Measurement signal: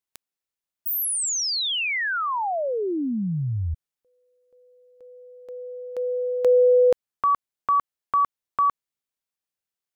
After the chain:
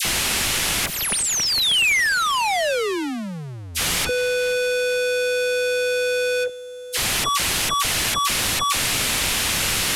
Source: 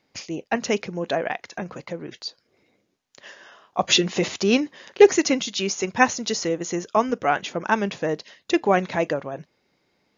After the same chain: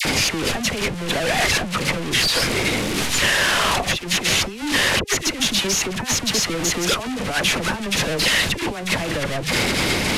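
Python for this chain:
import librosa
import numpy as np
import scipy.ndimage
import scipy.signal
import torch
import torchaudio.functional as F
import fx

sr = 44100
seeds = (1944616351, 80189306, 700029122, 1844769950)

y = fx.delta_mod(x, sr, bps=64000, step_db=-15.0)
y = fx.low_shelf(y, sr, hz=210.0, db=10.0)
y = fx.over_compress(y, sr, threshold_db=-20.0, ratio=-0.5)
y = fx.dynamic_eq(y, sr, hz=2600.0, q=0.87, threshold_db=-36.0, ratio=4.0, max_db=6)
y = fx.dispersion(y, sr, late='lows', ms=51.0, hz=1200.0)
y = y * librosa.db_to_amplitude(-3.0)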